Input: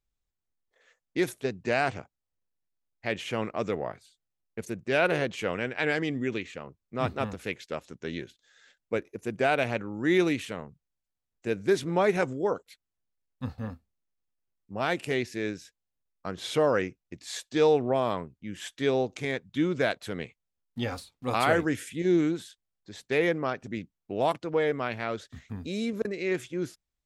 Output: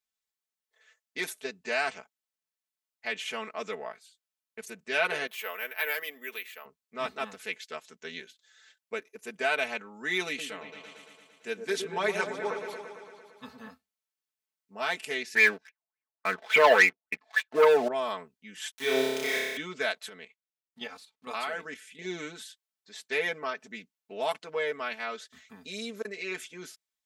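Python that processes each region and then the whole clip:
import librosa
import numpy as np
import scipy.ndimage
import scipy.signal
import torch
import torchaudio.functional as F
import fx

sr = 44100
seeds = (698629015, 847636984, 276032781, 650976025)

y = fx.chain(x, sr, fx.highpass(hz=520.0, slope=12),
    fx.high_shelf(hz=4100.0, db=-5.5),
    fx.resample_bad(factor=3, down='none', up='hold'), at=(5.27, 6.65))
y = fx.chain(y, sr, fx.peak_eq(hz=3100.0, db=2.5, octaves=0.2),
    fx.echo_opening(ms=113, hz=750, octaves=1, feedback_pct=70, wet_db=-6), at=(10.27, 13.68))
y = fx.chain(y, sr, fx.highpass(hz=66.0, slope=24),
    fx.filter_lfo_lowpass(shape='sine', hz=3.5, low_hz=640.0, high_hz=2400.0, q=7.2),
    fx.leveller(passes=2), at=(15.35, 17.88))
y = fx.chain(y, sr, fx.sample_gate(floor_db=-36.5),
    fx.room_flutter(wall_m=5.2, rt60_s=1.4), at=(18.71, 19.57))
y = fx.chain(y, sr, fx.level_steps(step_db=10),
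    fx.high_shelf(hz=7500.0, db=-10.0), at=(20.09, 22.02))
y = fx.highpass(y, sr, hz=1400.0, slope=6)
y = y + 0.88 * np.pad(y, (int(4.6 * sr / 1000.0), 0))[:len(y)]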